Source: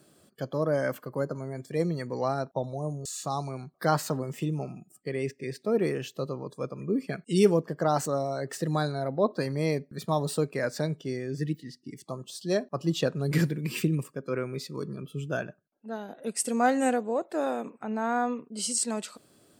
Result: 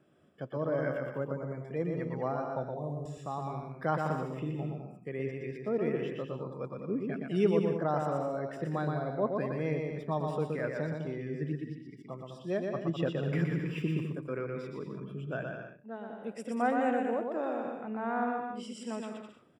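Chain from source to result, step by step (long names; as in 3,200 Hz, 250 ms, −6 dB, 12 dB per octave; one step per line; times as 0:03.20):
Savitzky-Golay smoothing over 25 samples
bouncing-ball delay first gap 120 ms, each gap 0.7×, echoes 5
level −6 dB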